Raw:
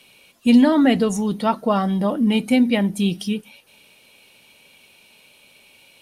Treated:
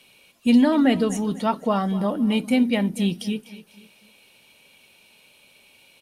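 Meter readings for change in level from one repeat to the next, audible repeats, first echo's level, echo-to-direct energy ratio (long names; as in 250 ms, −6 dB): −8.0 dB, 3, −17.0 dB, −16.5 dB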